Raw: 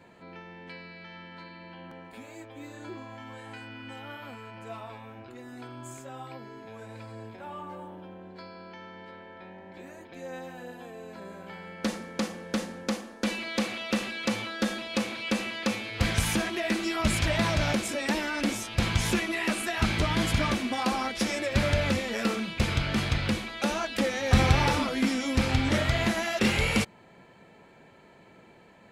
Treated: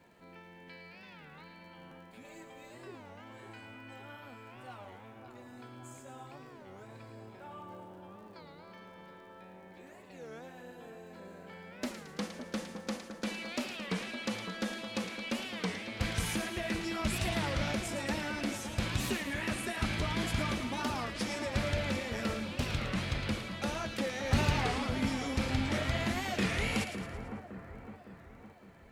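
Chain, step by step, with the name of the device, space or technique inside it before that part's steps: warped LP (warped record 33 1/3 rpm, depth 250 cents; crackle 32 per s -47 dBFS; pink noise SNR 39 dB); 2.24–2.75 s: comb 5.1 ms, depth 97%; two-band feedback delay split 1.6 kHz, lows 560 ms, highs 111 ms, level -8.5 dB; trim -7.5 dB

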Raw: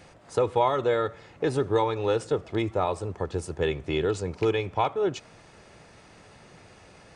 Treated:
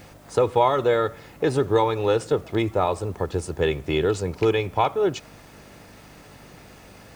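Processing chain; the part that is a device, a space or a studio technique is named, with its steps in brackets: video cassette with head-switching buzz (mains buzz 50 Hz, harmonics 6, -57 dBFS -1 dB/octave; white noise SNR 36 dB); trim +4 dB

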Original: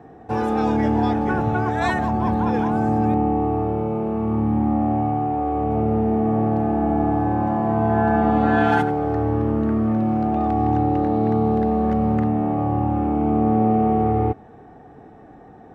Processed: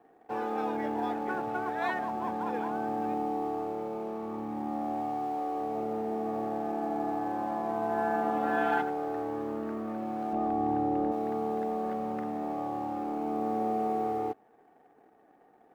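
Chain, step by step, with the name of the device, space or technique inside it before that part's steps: phone line with mismatched companding (band-pass 340–3300 Hz; companding laws mixed up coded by A); 10.33–11.12 s: tilt EQ -2.5 dB/octave; trim -8 dB

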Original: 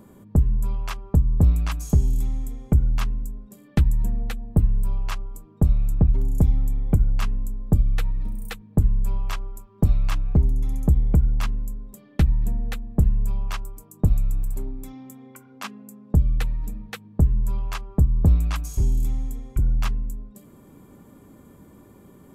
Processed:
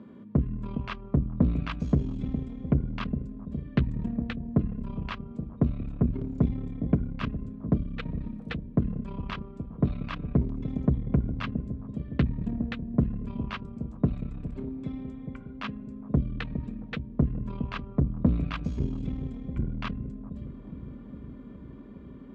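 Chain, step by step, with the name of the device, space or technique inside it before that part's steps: analogue delay pedal into a guitar amplifier (bucket-brigade echo 412 ms, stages 2048, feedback 76%, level -11 dB; valve stage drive 14 dB, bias 0.55; cabinet simulation 92–3700 Hz, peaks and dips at 100 Hz -7 dB, 240 Hz +8 dB, 810 Hz -7 dB); trim +1.5 dB

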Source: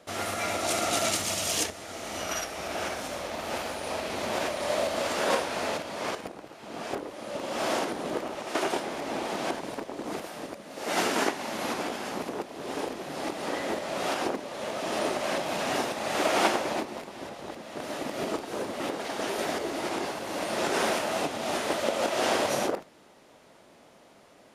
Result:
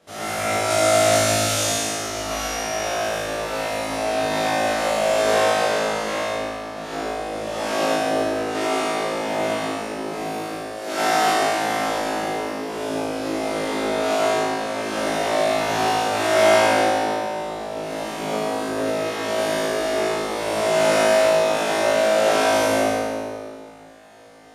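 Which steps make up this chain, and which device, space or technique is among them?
tunnel (flutter echo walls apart 3.2 m, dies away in 1.4 s; reverberation RT60 2.0 s, pre-delay 59 ms, DRR -3 dB); trim -4.5 dB

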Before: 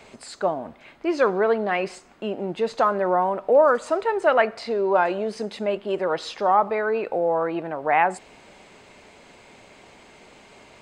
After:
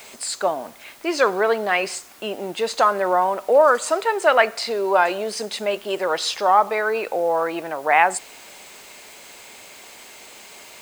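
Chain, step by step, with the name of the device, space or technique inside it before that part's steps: turntable without a phono preamp (RIAA curve recording; white noise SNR 28 dB); trim +3.5 dB

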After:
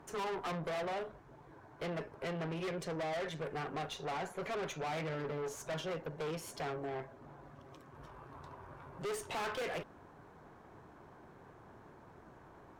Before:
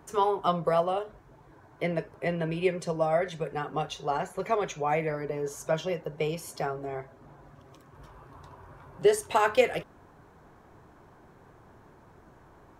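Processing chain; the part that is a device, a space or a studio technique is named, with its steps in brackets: 4.91–5.38 s: comb 7.4 ms, depth 52%; tube preamp driven hard (valve stage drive 37 dB, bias 0.55; bass shelf 82 Hz -7.5 dB; treble shelf 5.8 kHz -7 dB); trim +1.5 dB

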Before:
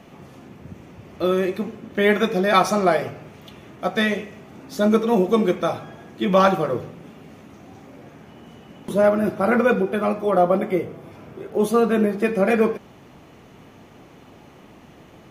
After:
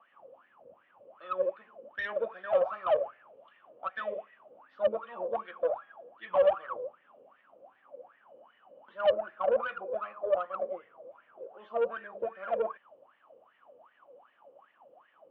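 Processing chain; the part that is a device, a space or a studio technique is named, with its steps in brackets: wah-wah guitar rig (wah-wah 2.6 Hz 490–1900 Hz, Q 16; valve stage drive 26 dB, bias 0.25; cabinet simulation 82–3600 Hz, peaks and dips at 160 Hz -6 dB, 390 Hz -4 dB, 560 Hz +7 dB, 1.1 kHz +4 dB, 2 kHz -7 dB, 3 kHz +9 dB); trim +3 dB

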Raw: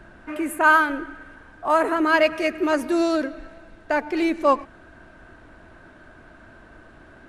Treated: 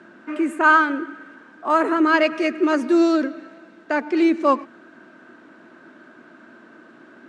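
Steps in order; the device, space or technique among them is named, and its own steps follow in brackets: television speaker (cabinet simulation 180–8000 Hz, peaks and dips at 240 Hz +6 dB, 340 Hz +5 dB, 740 Hz -4 dB, 1.3 kHz +3 dB)

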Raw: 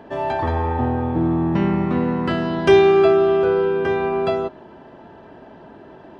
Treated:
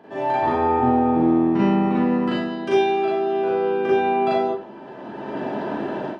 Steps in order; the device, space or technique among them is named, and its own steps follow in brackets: far laptop microphone (reverberation RT60 0.35 s, pre-delay 36 ms, DRR -7 dB; high-pass 140 Hz 12 dB/octave; level rider gain up to 16 dB); trim -7.5 dB

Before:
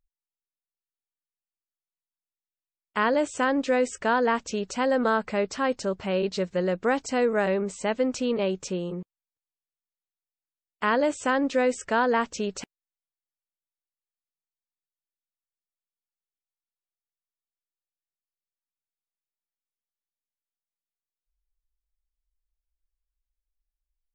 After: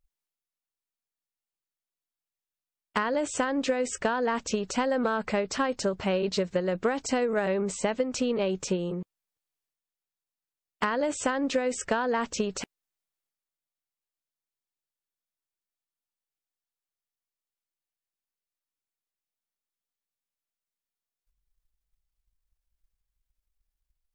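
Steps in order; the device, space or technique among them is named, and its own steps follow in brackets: drum-bus smash (transient shaper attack +9 dB, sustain +5 dB; compression 6:1, threshold -22 dBFS, peak gain reduction 9.5 dB; saturation -14 dBFS, distortion -22 dB)

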